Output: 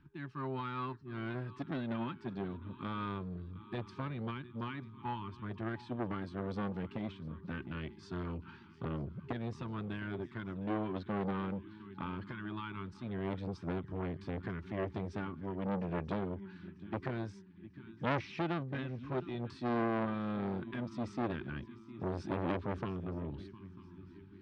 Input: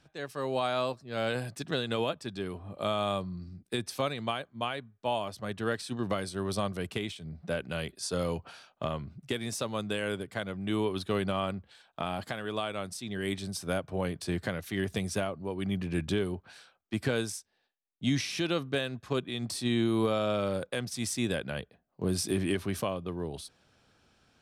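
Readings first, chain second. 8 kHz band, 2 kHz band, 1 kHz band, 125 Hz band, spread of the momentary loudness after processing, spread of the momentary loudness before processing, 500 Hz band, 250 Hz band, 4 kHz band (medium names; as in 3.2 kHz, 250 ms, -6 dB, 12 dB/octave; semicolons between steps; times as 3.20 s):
under -25 dB, -8.0 dB, -5.0 dB, -4.0 dB, 9 LU, 8 LU, -9.0 dB, -4.5 dB, -17.0 dB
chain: FFT band-reject 400–850 Hz; phaser 0.22 Hz, delay 4.9 ms, feedback 32%; tape spacing loss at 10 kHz 44 dB; on a send: shuffle delay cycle 944 ms, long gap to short 3:1, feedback 44%, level -19.5 dB; on the sum: transformer saturation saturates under 1.3 kHz; trim +1 dB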